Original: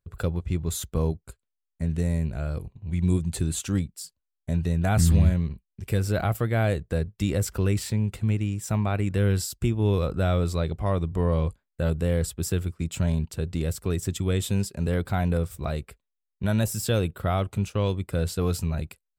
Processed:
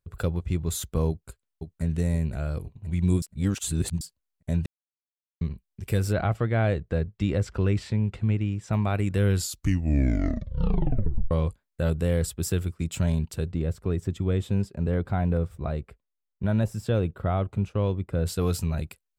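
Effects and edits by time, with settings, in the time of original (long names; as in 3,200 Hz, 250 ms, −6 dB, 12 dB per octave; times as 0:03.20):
0:01.09–0:01.82: delay throw 520 ms, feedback 45%, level −6.5 dB
0:03.22–0:04.01: reverse
0:04.66–0:05.41: silence
0:06.13–0:08.73: Bessel low-pass filter 3,200 Hz
0:09.33: tape stop 1.98 s
0:13.51–0:18.26: low-pass filter 1,200 Hz 6 dB per octave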